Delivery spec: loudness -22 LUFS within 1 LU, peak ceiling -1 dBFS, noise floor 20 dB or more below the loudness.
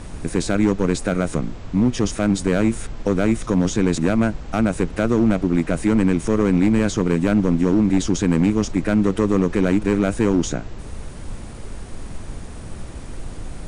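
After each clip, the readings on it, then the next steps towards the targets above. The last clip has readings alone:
clipped 2.9%; flat tops at -10.0 dBFS; noise floor -34 dBFS; noise floor target -40 dBFS; loudness -20.0 LUFS; peak -10.0 dBFS; loudness target -22.0 LUFS
-> clip repair -10 dBFS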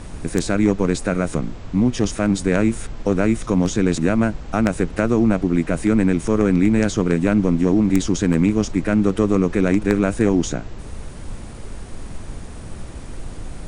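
clipped 0.0%; noise floor -34 dBFS; noise floor target -39 dBFS
-> noise print and reduce 6 dB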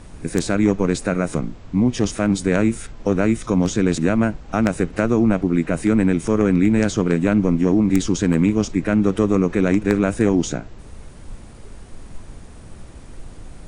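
noise floor -40 dBFS; loudness -19.5 LUFS; peak -1.0 dBFS; loudness target -22.0 LUFS
-> gain -2.5 dB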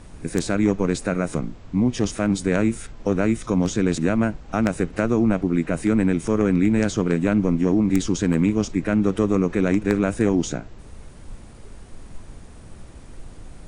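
loudness -22.0 LUFS; peak -3.5 dBFS; noise floor -43 dBFS

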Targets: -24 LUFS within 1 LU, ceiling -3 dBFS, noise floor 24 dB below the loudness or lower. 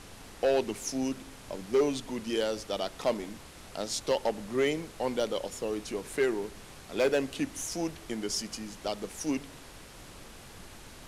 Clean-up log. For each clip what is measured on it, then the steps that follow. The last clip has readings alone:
clipped 0.5%; flat tops at -19.5 dBFS; noise floor -49 dBFS; noise floor target -56 dBFS; loudness -32.0 LUFS; peak -19.5 dBFS; loudness target -24.0 LUFS
-> clip repair -19.5 dBFS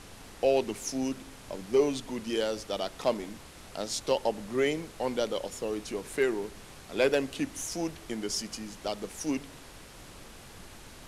clipped 0.0%; noise floor -49 dBFS; noise floor target -56 dBFS
-> noise print and reduce 7 dB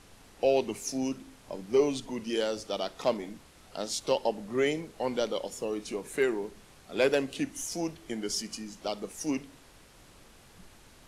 noise floor -56 dBFS; loudness -31.5 LUFS; peak -12.0 dBFS; loudness target -24.0 LUFS
-> gain +7.5 dB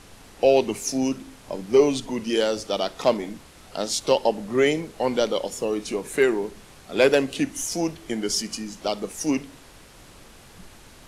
loudness -24.0 LUFS; peak -4.5 dBFS; noise floor -49 dBFS

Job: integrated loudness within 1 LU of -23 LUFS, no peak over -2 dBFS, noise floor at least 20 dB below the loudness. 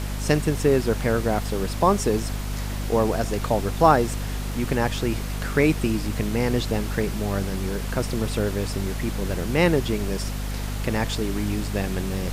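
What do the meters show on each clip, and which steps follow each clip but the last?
hum 50 Hz; harmonics up to 250 Hz; hum level -26 dBFS; noise floor -29 dBFS; noise floor target -45 dBFS; loudness -24.5 LUFS; peak -3.0 dBFS; loudness target -23.0 LUFS
-> de-hum 50 Hz, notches 5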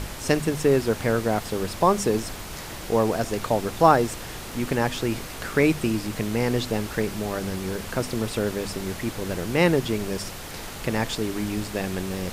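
hum none; noise floor -37 dBFS; noise floor target -45 dBFS
-> noise print and reduce 8 dB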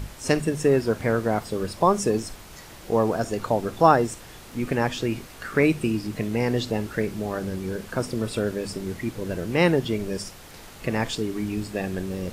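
noise floor -44 dBFS; noise floor target -45 dBFS
-> noise print and reduce 6 dB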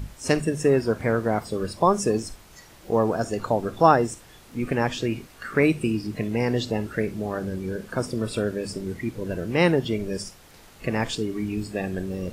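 noise floor -50 dBFS; loudness -25.5 LUFS; peak -3.5 dBFS; loudness target -23.0 LUFS
-> gain +2.5 dB; limiter -2 dBFS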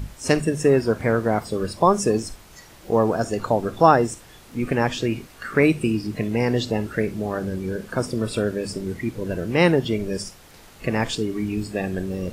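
loudness -23.0 LUFS; peak -2.0 dBFS; noise floor -47 dBFS

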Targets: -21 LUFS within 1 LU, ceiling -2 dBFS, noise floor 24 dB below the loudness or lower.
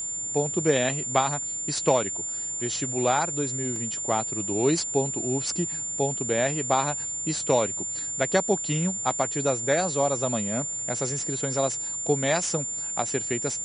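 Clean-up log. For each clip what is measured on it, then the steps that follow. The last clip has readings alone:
dropouts 2; longest dropout 2.3 ms; steady tone 7200 Hz; tone level -29 dBFS; loudness -25.5 LUFS; peak -6.5 dBFS; loudness target -21.0 LUFS
-> interpolate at 3.76/13.5, 2.3 ms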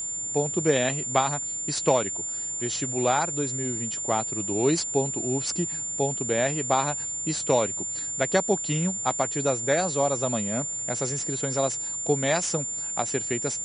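dropouts 0; steady tone 7200 Hz; tone level -29 dBFS
-> notch 7200 Hz, Q 30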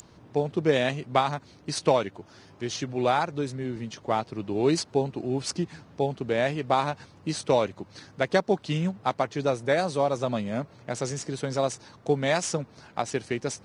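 steady tone none; loudness -28.0 LUFS; peak -7.0 dBFS; loudness target -21.0 LUFS
-> gain +7 dB; limiter -2 dBFS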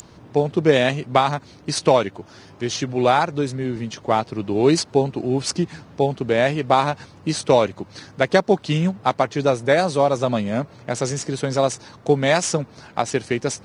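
loudness -21.0 LUFS; peak -2.0 dBFS; noise floor -47 dBFS

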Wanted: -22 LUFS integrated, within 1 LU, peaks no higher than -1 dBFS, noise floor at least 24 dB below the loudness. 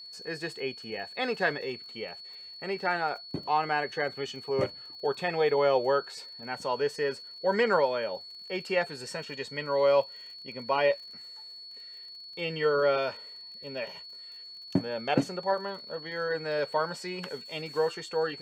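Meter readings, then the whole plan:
ticks 35/s; steady tone 4400 Hz; tone level -43 dBFS; loudness -30.0 LUFS; peak -11.0 dBFS; loudness target -22.0 LUFS
-> de-click; notch 4400 Hz, Q 30; gain +8 dB

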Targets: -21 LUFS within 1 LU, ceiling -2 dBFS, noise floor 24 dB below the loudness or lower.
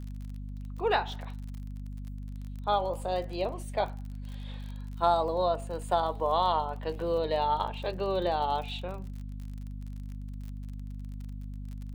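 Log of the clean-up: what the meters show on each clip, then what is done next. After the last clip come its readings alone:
ticks 38/s; hum 50 Hz; harmonics up to 250 Hz; hum level -36 dBFS; loudness -32.5 LUFS; peak -12.5 dBFS; loudness target -21.0 LUFS
-> de-click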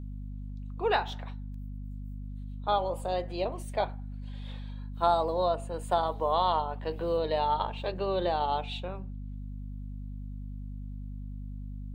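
ticks 0.17/s; hum 50 Hz; harmonics up to 250 Hz; hum level -36 dBFS
-> notches 50/100/150/200/250 Hz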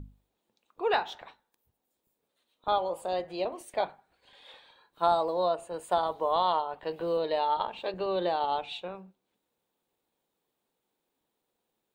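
hum none; loudness -30.5 LUFS; peak -12.5 dBFS; loudness target -21.0 LUFS
-> gain +9.5 dB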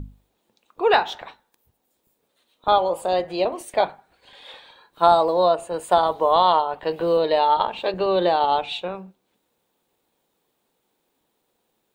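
loudness -21.0 LUFS; peak -3.0 dBFS; noise floor -73 dBFS

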